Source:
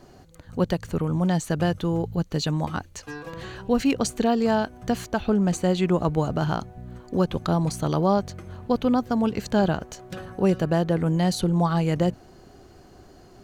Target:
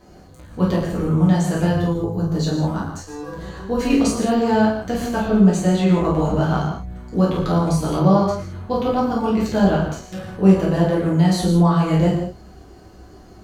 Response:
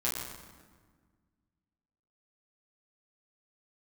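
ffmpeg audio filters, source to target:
-filter_complex "[0:a]asettb=1/sr,asplit=3[s0][s1][s2];[s0]atrim=end=1.704[s3];[s1]atrim=start=1.7:end=3.77,asetpts=PTS-STARTPTS,afade=t=in:d=0.004:c=qsin,afade=t=out:st=2.066:d=0.004:c=qsin,equalizer=f=2500:w=1.3:g=-9[s4];[s2]atrim=start=3.766[s5];[s3][s4]acrossfade=d=0.004:c1=hsin:c2=qsin[s6];[s6][s5]acrossfade=d=0.004:c1=qsin:c2=hsin[s7];[1:a]atrim=start_sample=2205,afade=t=out:st=0.28:d=0.01,atrim=end_sample=12789[s8];[s7][s8]afir=irnorm=-1:irlink=0,volume=0.794"

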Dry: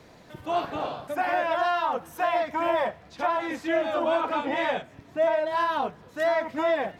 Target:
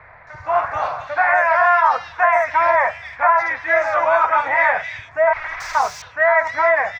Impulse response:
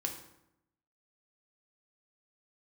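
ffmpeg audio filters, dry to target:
-filter_complex "[0:a]asettb=1/sr,asplit=3[s0][s1][s2];[s0]atrim=end=5.334[s3];[s1]atrim=start=5.33:end=5.75,asetpts=PTS-STARTPTS,afade=t=in:d=0.004:c=qsin,afade=t=out:st=0.416:d=0.004:c=qsin,aeval=exprs='(mod(35.5*val(0)+1,2)-1)/35.5':c=same[s4];[s2]atrim=start=5.746[s5];[s3][s4]acrossfade=d=0.004:c1=hsin:c2=qsin[s6];[s6][s5]acrossfade=d=0.004:c1=qsin:c2=hsin,firequalizer=gain_entry='entry(100,0);entry(200,-21);entry(320,-21);entry(610,-2);entry(1000,5);entry(2100,10);entry(3000,-10);entry(5700,-1);entry(9600,-22)':delay=0.05:min_phase=1,acrossover=split=2800[s7][s8];[s8]adelay=270[s9];[s7][s9]amix=inputs=2:normalize=0,volume=2.51"

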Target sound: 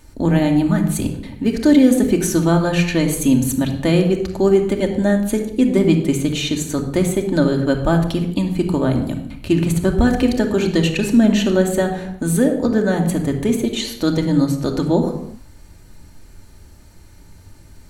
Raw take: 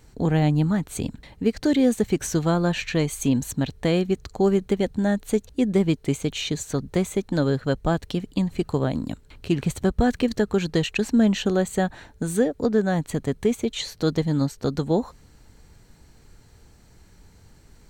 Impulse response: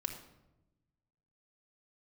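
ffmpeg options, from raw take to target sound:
-filter_complex "[0:a]equalizer=f=11000:w=3.8:g=14[s0];[1:a]atrim=start_sample=2205,afade=t=out:st=0.43:d=0.01,atrim=end_sample=19404[s1];[s0][s1]afir=irnorm=-1:irlink=0,volume=1.78"

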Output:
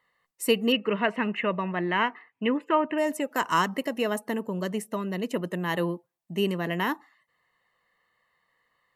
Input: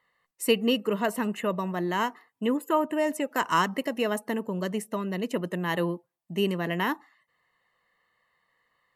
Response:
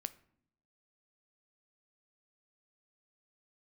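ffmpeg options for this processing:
-filter_complex "[0:a]asettb=1/sr,asplit=3[s0][s1][s2];[s0]atrim=end=0.724[s3];[s1]atrim=start=0.72:end=2.98,asetpts=PTS-STARTPTS,afade=t=in:d=0.004:c=qsin,afade=t=out:st=2.256:d=0.004:c=qsin,lowpass=f=2400:t=q:w=3.3[s4];[s2]atrim=start=2.976[s5];[s3][s4]acrossfade=d=0.004:c1=hsin:c2=qsin[s6];[s6][s5]acrossfade=d=0.004:c1=qsin:c2=hsin"

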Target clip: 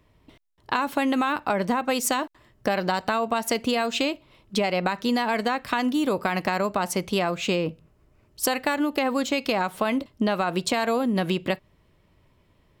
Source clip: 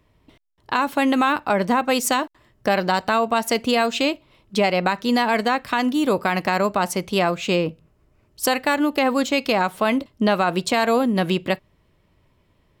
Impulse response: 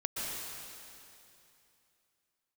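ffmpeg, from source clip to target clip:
-af "acompressor=threshold=0.1:ratio=6"

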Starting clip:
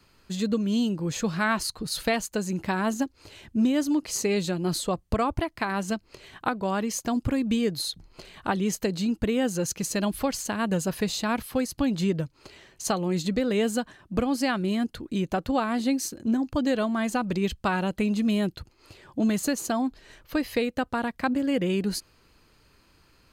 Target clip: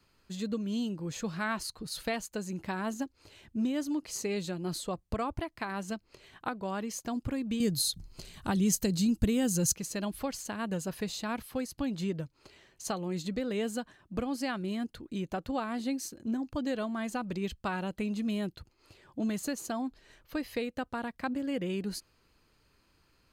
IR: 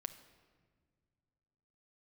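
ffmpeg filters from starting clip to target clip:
-filter_complex "[0:a]asettb=1/sr,asplit=3[s0][s1][s2];[s0]atrim=end=7.604[s3];[s1]atrim=start=7.6:end=9.76,asetpts=PTS-STARTPTS,afade=t=in:d=0.004:c=qsin,afade=t=out:st=2.156:d=0.004:c=qsin,bass=f=250:g=12,treble=f=4000:g=13[s4];[s2]atrim=start=9.756[s5];[s3][s4]acrossfade=d=0.004:c1=hsin:c2=qsin[s6];[s6][s5]acrossfade=d=0.004:c1=qsin:c2=hsin,volume=0.398"

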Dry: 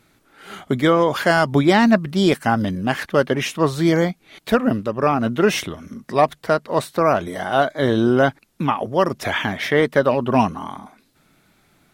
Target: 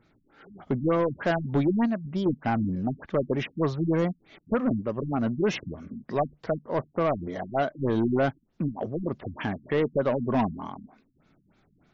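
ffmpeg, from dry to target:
-filter_complex "[0:a]tiltshelf=f=970:g=3,asettb=1/sr,asplit=3[s0][s1][s2];[s0]atrim=end=1.854[s3];[s1]atrim=start=1.85:end=2.26,asetpts=PTS-STARTPTS,afade=t=in:d=0.004:c=qsin,afade=t=out:st=0.406:d=0.004:c=qsin,acompressor=threshold=0.126:ratio=6[s4];[s2]atrim=start=2.256[s5];[s3][s4]acrossfade=d=0.004:c1=hsin:c2=qsin[s6];[s6][s5]acrossfade=d=0.004:c1=qsin:c2=hsin,asoftclip=type=tanh:threshold=0.282,afftfilt=real='re*lt(b*sr/1024,270*pow(7500/270,0.5+0.5*sin(2*PI*3.3*pts/sr)))':imag='im*lt(b*sr/1024,270*pow(7500/270,0.5+0.5*sin(2*PI*3.3*pts/sr)))':win_size=1024:overlap=0.75,volume=0.473"

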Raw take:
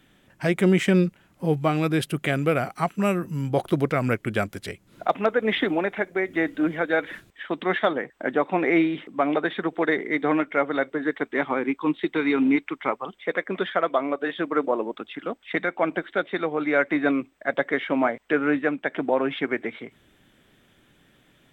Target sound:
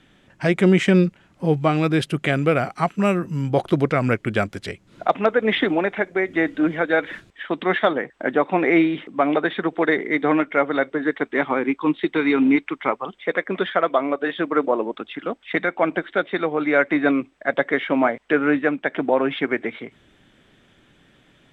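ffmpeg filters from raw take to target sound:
-af "lowpass=7300,volume=1.5"

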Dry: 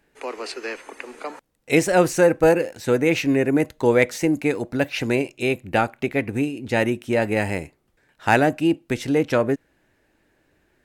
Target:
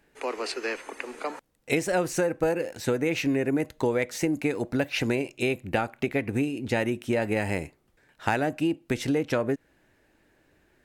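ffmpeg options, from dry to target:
-af "acompressor=threshold=0.0794:ratio=6"

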